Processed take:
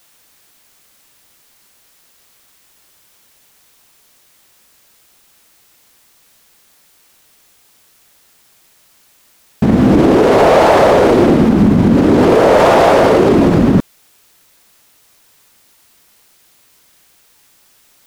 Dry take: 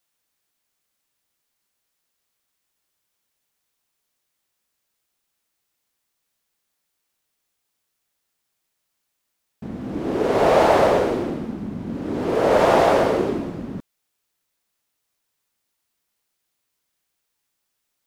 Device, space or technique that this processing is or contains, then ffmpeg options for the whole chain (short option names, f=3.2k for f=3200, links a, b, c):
loud club master: -af "acompressor=threshold=-22dB:ratio=2,asoftclip=type=hard:threshold=-15dB,alimiter=level_in=26dB:limit=-1dB:release=50:level=0:latency=1,volume=-1dB"